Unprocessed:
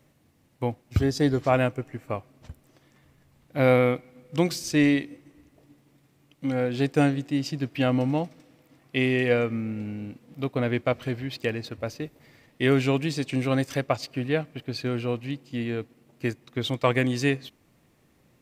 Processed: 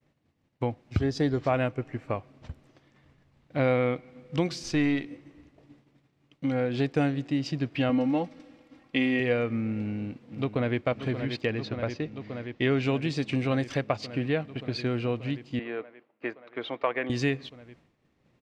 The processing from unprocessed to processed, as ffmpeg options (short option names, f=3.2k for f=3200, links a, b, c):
-filter_complex "[0:a]asettb=1/sr,asplit=3[a][b][c];[a]atrim=end=4.634[d];[b]atrim=start=4.63:end=5.06,asetpts=PTS-STARTPTS,afade=t=in:d=0.004:c=qsin,afade=t=out:st=0.426:d=0.004:c=qsin,aeval=exprs='if(lt(val(0),0),0.708*val(0),val(0))':c=same[e];[c]atrim=start=5.056[f];[d][e]acrossfade=d=0.004:c1=hsin:c2=qsin[g];[g][f]acrossfade=d=0.004:c1=qsin:c2=hsin,asettb=1/sr,asplit=3[h][i][j];[h]atrim=end=7.894[k];[i]atrim=start=7.89:end=9.2,asetpts=PTS-STARTPTS,afade=t=in:d=0.004:c=qsin,afade=t=out:st=1.306:d=0.004:c=qsin,aecho=1:1:3.7:0.63,atrim=end_sample=57771[l];[j]atrim=start=9.196[m];[k][l]acrossfade=d=0.004:c1=hsin:c2=qsin[n];[n][m]acrossfade=d=0.004:c1=qsin:c2=hsin,asplit=2[o][p];[p]afade=t=in:st=9.74:d=0.01,afade=t=out:st=10.81:d=0.01,aecho=0:1:580|1160|1740|2320|2900|3480|4060|4640|5220|5800|6380|6960:0.298538|0.253758|0.215694|0.18334|0.155839|0.132463|0.112594|0.0957045|0.0813488|0.0691465|0.0587745|0.0499584[q];[o][q]amix=inputs=2:normalize=0,asettb=1/sr,asplit=3[r][s][t];[r]atrim=end=11.414[u];[s]atrim=start=11.41:end=12.83,asetpts=PTS-STARTPTS,afade=t=in:d=0.004:c=qsin,afade=t=out:st=1.416:d=0.004:c=qsin,lowpass=f=6.7k:w=0.5412,lowpass=f=6.7k:w=1.3066[v];[t]atrim=start=12.826[w];[u][v]acrossfade=d=0.004:c1=hsin:c2=qsin[x];[x][w]acrossfade=d=0.004:c1=qsin:c2=hsin,asettb=1/sr,asplit=3[y][z][aa];[y]atrim=end=15.594[ab];[z]atrim=start=15.59:end=17.1,asetpts=PTS-STARTPTS,afade=t=in:d=0.004:c=qsin,afade=t=out:st=1.506:d=0.004:c=qsin,highpass=480,lowpass=2.1k[ac];[aa]atrim=start=17.096[ad];[ab][ac]acrossfade=d=0.004:c1=hsin:c2=qsin[ae];[ae][ad]acrossfade=d=0.004:c1=qsin:c2=hsin,lowpass=4.7k,acompressor=threshold=-28dB:ratio=2,agate=range=-33dB:threshold=-55dB:ratio=3:detection=peak,volume=2dB"